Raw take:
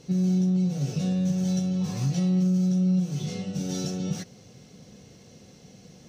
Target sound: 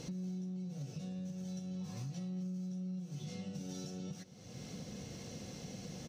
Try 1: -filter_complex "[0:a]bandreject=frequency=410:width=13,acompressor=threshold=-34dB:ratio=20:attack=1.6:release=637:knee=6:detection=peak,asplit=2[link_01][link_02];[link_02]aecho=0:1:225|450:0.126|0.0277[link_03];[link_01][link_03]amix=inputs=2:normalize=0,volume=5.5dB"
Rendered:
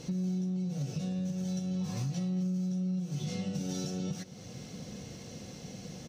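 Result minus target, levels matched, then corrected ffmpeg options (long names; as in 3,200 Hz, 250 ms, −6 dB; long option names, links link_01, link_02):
downward compressor: peak gain reduction −8.5 dB
-filter_complex "[0:a]bandreject=frequency=410:width=13,acompressor=threshold=-43dB:ratio=20:attack=1.6:release=637:knee=6:detection=peak,asplit=2[link_01][link_02];[link_02]aecho=0:1:225|450:0.126|0.0277[link_03];[link_01][link_03]amix=inputs=2:normalize=0,volume=5.5dB"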